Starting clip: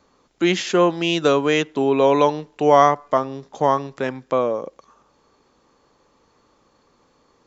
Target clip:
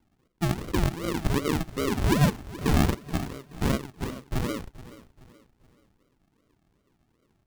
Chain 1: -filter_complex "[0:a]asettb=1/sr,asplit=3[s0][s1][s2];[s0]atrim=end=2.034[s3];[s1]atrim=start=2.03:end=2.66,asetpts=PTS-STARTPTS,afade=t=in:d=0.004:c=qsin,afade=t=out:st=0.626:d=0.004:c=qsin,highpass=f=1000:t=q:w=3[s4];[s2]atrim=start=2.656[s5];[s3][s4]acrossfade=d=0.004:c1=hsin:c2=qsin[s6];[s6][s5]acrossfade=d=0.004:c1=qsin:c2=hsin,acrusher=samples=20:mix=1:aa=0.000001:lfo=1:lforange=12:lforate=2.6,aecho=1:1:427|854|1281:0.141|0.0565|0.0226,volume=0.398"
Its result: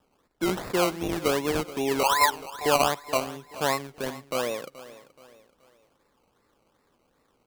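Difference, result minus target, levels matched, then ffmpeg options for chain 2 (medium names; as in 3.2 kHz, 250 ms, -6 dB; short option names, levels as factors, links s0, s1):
decimation with a swept rate: distortion -39 dB
-filter_complex "[0:a]asettb=1/sr,asplit=3[s0][s1][s2];[s0]atrim=end=2.034[s3];[s1]atrim=start=2.03:end=2.66,asetpts=PTS-STARTPTS,afade=t=in:d=0.004:c=qsin,afade=t=out:st=0.626:d=0.004:c=qsin,highpass=f=1000:t=q:w=3[s4];[s2]atrim=start=2.656[s5];[s3][s4]acrossfade=d=0.004:c1=hsin:c2=qsin[s6];[s6][s5]acrossfade=d=0.004:c1=qsin:c2=hsin,acrusher=samples=71:mix=1:aa=0.000001:lfo=1:lforange=42.6:lforate=2.6,aecho=1:1:427|854|1281:0.141|0.0565|0.0226,volume=0.398"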